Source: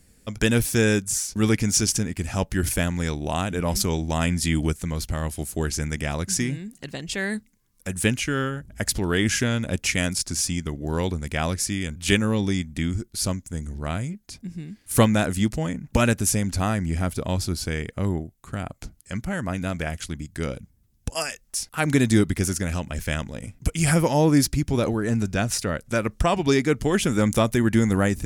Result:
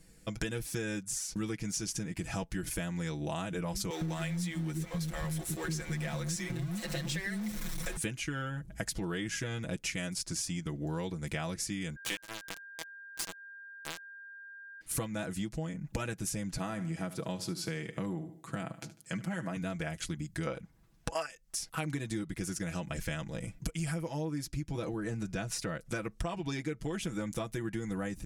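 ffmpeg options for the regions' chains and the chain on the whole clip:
-filter_complex "[0:a]asettb=1/sr,asplit=3[s0][s1][s2];[s0]atrim=end=3.904[s3];[s1]atrim=start=3.9:end=7.97,asetpts=PTS-STARTPTS,afade=t=in:d=0.004:c=qsin,afade=t=out:st=4.066:d=0.004:c=qsin,aeval=exprs='val(0)+0.5*0.0447*sgn(val(0))':c=same,aecho=1:1:5.6:0.63,atrim=end_sample=179487,acrossover=split=340[s4][s5];[s4]adelay=110[s6];[s6][s5]amix=inputs=2:normalize=0,atrim=end_sample=179487[s7];[s2]atrim=start=7.966[s8];[s3][s7]acrossfade=d=0.004:c1=hsin:c2=qsin[s9];[s9][s8]acrossfade=d=0.004:c1=qsin:c2=hsin,asettb=1/sr,asplit=3[s10][s11][s12];[s10]atrim=end=11.964[s13];[s11]atrim=start=11.96:end=14.81,asetpts=PTS-STARTPTS,afade=t=in:d=0.004:c=qsin,afade=t=out:st=2.846:d=0.004:c=qsin,bass=f=250:g=-13,treble=f=4000:g=2,aeval=exprs='val(0)*gte(abs(val(0)),0.112)':c=same,aeval=exprs='val(0)+0.00562*sin(2*PI*1600*n/s)':c=same[s14];[s12]atrim=start=14.806[s15];[s13][s14]acrossfade=d=0.004:c1=hsin:c2=qsin[s16];[s16][s15]acrossfade=d=0.004:c1=qsin:c2=hsin,asettb=1/sr,asplit=3[s17][s18][s19];[s17]atrim=end=16.574[s20];[s18]atrim=start=16.57:end=19.57,asetpts=PTS-STARTPTS,afade=t=in:d=0.004:c=qsin,afade=t=out:st=2.996:d=0.004:c=qsin,highpass=f=120:w=0.5412,highpass=f=120:w=1.3066,aecho=1:1:74|148|222:0.168|0.0655|0.0255,atrim=end_sample=132300[s21];[s19]atrim=start=19.566[s22];[s20][s21]acrossfade=d=0.004:c1=hsin:c2=qsin[s23];[s23][s22]acrossfade=d=0.004:c1=qsin:c2=hsin,asettb=1/sr,asplit=3[s24][s25][s26];[s24]atrim=end=20.474[s27];[s25]atrim=start=20.47:end=21.26,asetpts=PTS-STARTPTS,afade=t=in:d=0.004:c=qsin,afade=t=out:st=0.786:d=0.004:c=qsin,equalizer=f=1100:w=0.32:g=14.5,asoftclip=type=hard:threshold=0.422[s28];[s26]atrim=start=21.256[s29];[s27][s28]acrossfade=d=0.004:c1=hsin:c2=qsin[s30];[s30][s29]acrossfade=d=0.004:c1=qsin:c2=hsin,highshelf=f=11000:g=-6.5,aecho=1:1:6.1:0.74,acompressor=threshold=0.0355:ratio=10,volume=0.668"

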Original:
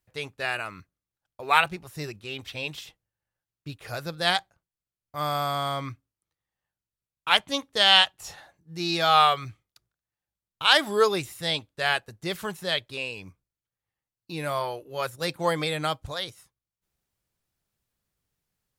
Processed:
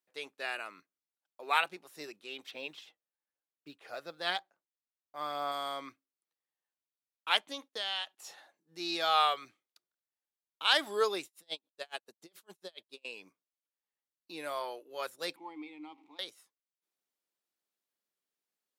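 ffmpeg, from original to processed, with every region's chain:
-filter_complex "[0:a]asettb=1/sr,asplit=3[s0][s1][s2];[s0]atrim=end=2.514[s3];[s1]atrim=start=2.51:end=5.52,asetpts=PTS-STARTPTS,afade=t=in:d=0.004:c=qsin,afade=t=out:st=3.006:d=0.004:c=qsin,lowpass=f=3000:p=1,aphaser=in_gain=1:out_gain=1:delay=1.6:decay=0.28:speed=1:type=sinusoidal,acrusher=bits=9:mode=log:mix=0:aa=0.000001[s4];[s2]atrim=start=5.516[s5];[s3][s4]acrossfade=d=0.004:c1=hsin:c2=qsin[s6];[s6][s5]acrossfade=d=0.004:c1=qsin:c2=hsin,asettb=1/sr,asplit=3[s7][s8][s9];[s7]atrim=end=7.514[s10];[s8]atrim=start=7.51:end=8.17,asetpts=PTS-STARTPTS,afade=t=in:d=0.004:c=qsin,afade=t=out:st=0.656:d=0.004:c=qsin,bandreject=f=7700:w=10,agate=range=0.112:threshold=0.002:ratio=16:release=100:detection=peak,acompressor=threshold=0.0355:ratio=2.5:attack=3.2:release=140:knee=1:detection=peak[s11];[s9]atrim=start=8.166[s12];[s10][s11]acrossfade=d=0.004:c1=hsin:c2=qsin[s13];[s13][s12]acrossfade=d=0.004:c1=qsin:c2=hsin,asettb=1/sr,asplit=3[s14][s15][s16];[s14]atrim=end=11.254[s17];[s15]atrim=start=11.25:end=13.05,asetpts=PTS-STARTPTS,afade=t=in:d=0.004:c=qsin,afade=t=out:st=1.796:d=0.004:c=qsin,equalizer=f=1800:w=1.3:g=-5.5,asoftclip=type=hard:threshold=0.178,aeval=exprs='val(0)*pow(10,-39*(0.5-0.5*cos(2*PI*7.1*n/s))/20)':c=same[s18];[s16]atrim=start=13.046[s19];[s17][s18]acrossfade=d=0.004:c1=hsin:c2=qsin[s20];[s20][s19]acrossfade=d=0.004:c1=qsin:c2=hsin,asettb=1/sr,asplit=3[s21][s22][s23];[s21]atrim=end=15.364[s24];[s22]atrim=start=15.36:end=16.19,asetpts=PTS-STARTPTS,afade=t=in:d=0.004:c=qsin,afade=t=out:st=0.826:d=0.004:c=qsin,aeval=exprs='val(0)+0.5*0.0168*sgn(val(0))':c=same,asplit=3[s25][s26][s27];[s25]bandpass=f=300:t=q:w=8,volume=1[s28];[s26]bandpass=f=870:t=q:w=8,volume=0.501[s29];[s27]bandpass=f=2240:t=q:w=8,volume=0.355[s30];[s28][s29][s30]amix=inputs=3:normalize=0,equalizer=f=14000:w=0.31:g=-5[s31];[s23]atrim=start=16.186[s32];[s24][s31]acrossfade=d=0.004:c1=hsin:c2=qsin[s33];[s33][s32]acrossfade=d=0.004:c1=qsin:c2=hsin,highpass=f=260:w=0.5412,highpass=f=260:w=1.3066,equalizer=f=3700:t=o:w=0.77:g=2,volume=0.376"

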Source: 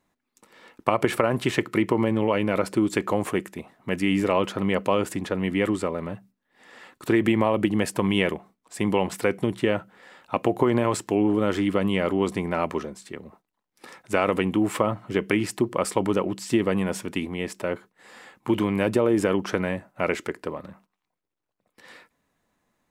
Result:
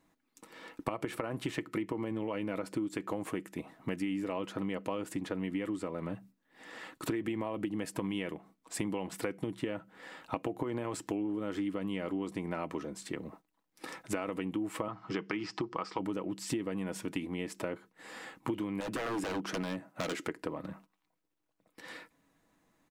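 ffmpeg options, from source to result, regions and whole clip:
-filter_complex "[0:a]asettb=1/sr,asplit=3[s0][s1][s2];[s0]atrim=end=14.884[s3];[s1]atrim=start=14.88:end=15.99,asetpts=PTS-STARTPTS,afade=t=in:d=0.004:c=qsin,afade=t=out:st=1.106:d=0.004:c=qsin,acrossover=split=4600[s4][s5];[s5]acompressor=threshold=0.00794:ratio=4:attack=1:release=60[s6];[s4][s6]amix=inputs=2:normalize=0,highpass=140,equalizer=f=260:t=q:w=4:g=-9,equalizer=f=570:t=q:w=4:g=-8,equalizer=f=830:t=q:w=4:g=4,equalizer=f=1200:t=q:w=4:g=7,equalizer=f=5100:t=q:w=4:g=9,lowpass=f=6400:w=0.5412,lowpass=f=6400:w=1.3066[s7];[s2]atrim=start=15.986[s8];[s3][s7]acrossfade=d=0.004:c1=hsin:c2=qsin[s9];[s9][s8]acrossfade=d=0.004:c1=qsin:c2=hsin,asettb=1/sr,asplit=3[s10][s11][s12];[s10]atrim=end=18.804[s13];[s11]atrim=start=18.8:end=20.27,asetpts=PTS-STARTPTS,afade=t=in:d=0.004:c=qsin,afade=t=out:st=1.466:d=0.004:c=qsin,highpass=130,aeval=exprs='0.0841*(abs(mod(val(0)/0.0841+3,4)-2)-1)':c=same[s14];[s12]atrim=start=20.266[s15];[s13][s14]acrossfade=d=0.004:c1=hsin:c2=qsin[s16];[s16][s15]acrossfade=d=0.004:c1=qsin:c2=hsin,equalizer=f=280:t=o:w=0.28:g=7.5,aecho=1:1:6.2:0.3,acompressor=threshold=0.0224:ratio=6"

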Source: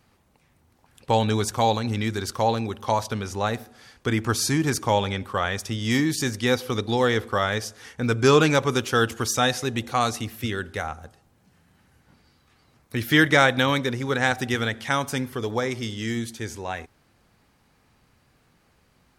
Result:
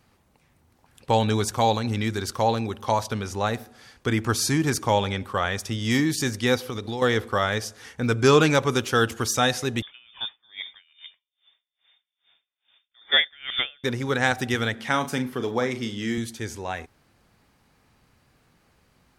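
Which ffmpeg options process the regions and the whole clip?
-filter_complex "[0:a]asettb=1/sr,asplit=3[s0][s1][s2];[s0]atrim=end=6.584[s3];[s1]atrim=start=6.58:end=7.02,asetpts=PTS-STARTPTS,afade=t=in:d=0.004:c=qsin,afade=t=out:st=0.436:d=0.004:c=qsin,acompressor=threshold=0.0447:ratio=4:attack=3.2:release=140:knee=1:detection=peak,aeval=exprs='sgn(val(0))*max(abs(val(0))-0.00119,0)':c=same[s4];[s2]atrim=start=7.016[s5];[s3][s4]acrossfade=d=0.004:c1=hsin:c2=qsin[s6];[s6][s5]acrossfade=d=0.004:c1=qsin:c2=hsin,asettb=1/sr,asplit=3[s7][s8][s9];[s7]atrim=end=9.824[s10];[s8]atrim=start=9.82:end=13.84,asetpts=PTS-STARTPTS,afade=t=in:d=0.004:c=qsin,afade=t=out:st=4.016:d=0.004:c=qsin,aecho=1:1:117|234|351:0.0631|0.0341|0.0184,atrim=end_sample=177282,lowpass=f=3100:t=q:w=0.5098,lowpass=f=3100:t=q:w=0.6013,lowpass=f=3100:t=q:w=0.9,lowpass=f=3100:t=q:w=2.563,afreqshift=-3700,aeval=exprs='val(0)*pow(10,-34*(0.5-0.5*cos(2*PI*2.4*n/s))/20)':c=same[s11];[s9]atrim=start=13.836[s12];[s10][s11]acrossfade=d=0.004:c1=hsin:c2=qsin[s13];[s13][s12]acrossfade=d=0.004:c1=qsin:c2=hsin,asettb=1/sr,asplit=3[s14][s15][s16];[s14]atrim=end=14.754[s17];[s15]atrim=start=14.75:end=16.18,asetpts=PTS-STARTPTS,afade=t=in:d=0.004:c=qsin,afade=t=out:st=1.426:d=0.004:c=qsin,highpass=180,bass=f=250:g=5,treble=f=4000:g=-4,asplit=2[s18][s19];[s19]adelay=40,volume=0.316[s20];[s18][s20]amix=inputs=2:normalize=0,atrim=end_sample=63063[s21];[s16]atrim=start=16.176[s22];[s17][s21]acrossfade=d=0.004:c1=hsin:c2=qsin[s23];[s23][s22]acrossfade=d=0.004:c1=qsin:c2=hsin"

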